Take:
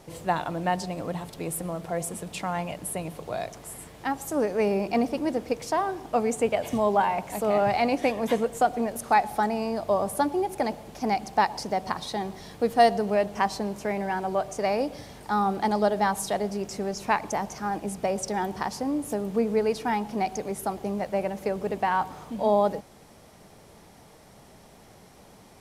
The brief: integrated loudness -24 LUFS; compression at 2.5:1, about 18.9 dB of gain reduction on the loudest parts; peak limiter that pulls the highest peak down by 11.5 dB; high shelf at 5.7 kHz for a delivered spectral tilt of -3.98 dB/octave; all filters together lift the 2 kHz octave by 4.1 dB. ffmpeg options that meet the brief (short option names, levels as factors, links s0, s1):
-af "equalizer=f=2000:t=o:g=4.5,highshelf=f=5700:g=5,acompressor=threshold=0.00708:ratio=2.5,volume=10,alimiter=limit=0.2:level=0:latency=1"